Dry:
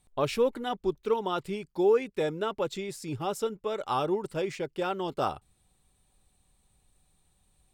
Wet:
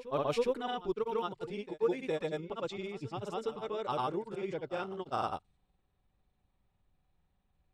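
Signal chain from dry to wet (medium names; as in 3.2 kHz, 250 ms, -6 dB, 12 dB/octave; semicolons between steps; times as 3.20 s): level-controlled noise filter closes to 2.3 kHz, open at -22.5 dBFS; granulator, pitch spread up and down by 0 st; reverse echo 412 ms -15 dB; trim -4.5 dB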